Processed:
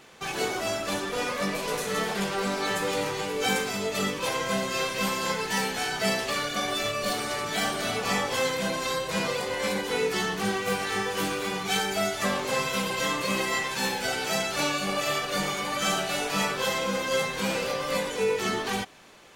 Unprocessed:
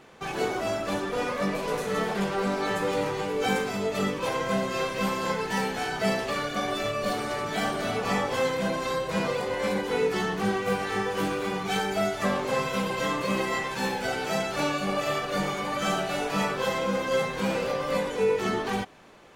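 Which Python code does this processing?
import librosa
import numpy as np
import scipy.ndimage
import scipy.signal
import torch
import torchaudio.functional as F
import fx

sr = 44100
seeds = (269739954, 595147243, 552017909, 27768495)

y = fx.high_shelf(x, sr, hz=2200.0, db=10.5)
y = F.gain(torch.from_numpy(y), -2.5).numpy()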